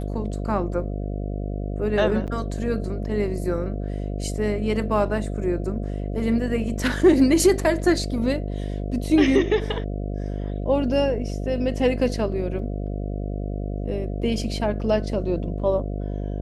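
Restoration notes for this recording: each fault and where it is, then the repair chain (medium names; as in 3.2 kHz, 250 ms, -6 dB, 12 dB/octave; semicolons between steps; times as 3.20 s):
buzz 50 Hz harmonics 14 -28 dBFS
2.27–2.28 s: dropout 8 ms
12.59 s: dropout 2.2 ms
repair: de-hum 50 Hz, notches 14; interpolate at 2.27 s, 8 ms; interpolate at 12.59 s, 2.2 ms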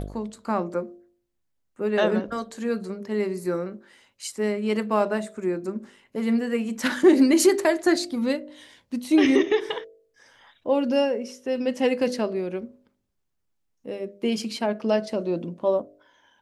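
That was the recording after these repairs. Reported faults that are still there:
nothing left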